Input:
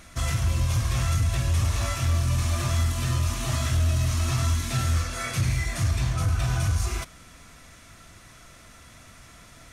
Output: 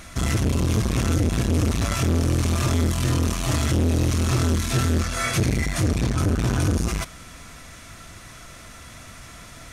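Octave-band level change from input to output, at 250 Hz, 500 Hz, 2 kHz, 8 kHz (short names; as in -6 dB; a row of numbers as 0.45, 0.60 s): +12.0, +9.5, +3.5, +2.5 dB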